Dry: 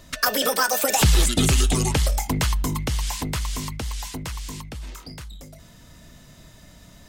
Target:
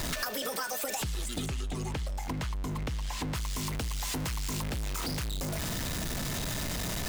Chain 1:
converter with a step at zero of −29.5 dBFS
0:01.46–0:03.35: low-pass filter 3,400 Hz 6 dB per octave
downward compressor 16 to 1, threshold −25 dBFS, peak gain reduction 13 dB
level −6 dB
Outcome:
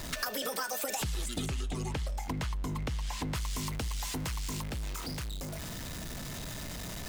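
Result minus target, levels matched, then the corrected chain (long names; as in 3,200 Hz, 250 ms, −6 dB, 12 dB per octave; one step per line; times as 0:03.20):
converter with a step at zero: distortion −6 dB
converter with a step at zero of −21.5 dBFS
0:01.46–0:03.35: low-pass filter 3,400 Hz 6 dB per octave
downward compressor 16 to 1, threshold −25 dBFS, peak gain reduction 14 dB
level −6 dB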